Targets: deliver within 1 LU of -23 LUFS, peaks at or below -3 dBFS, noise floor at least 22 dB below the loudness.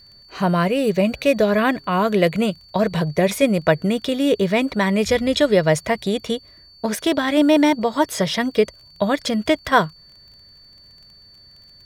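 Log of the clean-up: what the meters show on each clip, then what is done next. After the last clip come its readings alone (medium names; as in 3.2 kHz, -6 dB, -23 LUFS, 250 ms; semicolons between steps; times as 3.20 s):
tick rate 17 per s; steady tone 4.5 kHz; tone level -46 dBFS; loudness -19.5 LUFS; peak level -1.5 dBFS; loudness target -23.0 LUFS
-> de-click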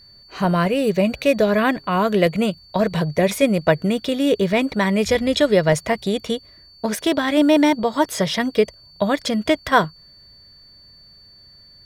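tick rate 0.68 per s; steady tone 4.5 kHz; tone level -46 dBFS
-> band-stop 4.5 kHz, Q 30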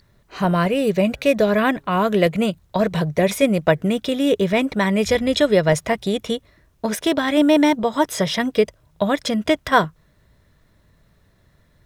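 steady tone not found; loudness -19.5 LUFS; peak level -1.5 dBFS; loudness target -23.0 LUFS
-> trim -3.5 dB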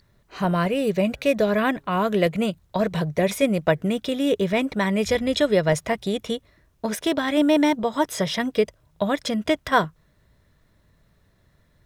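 loudness -23.0 LUFS; peak level -5.0 dBFS; noise floor -62 dBFS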